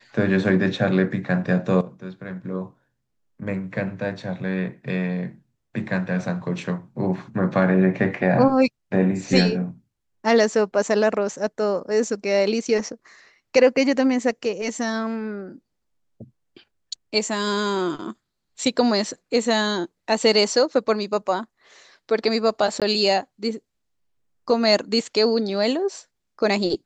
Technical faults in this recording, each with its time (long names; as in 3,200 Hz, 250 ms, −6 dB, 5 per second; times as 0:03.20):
0:22.80–0:22.82: drop-out 17 ms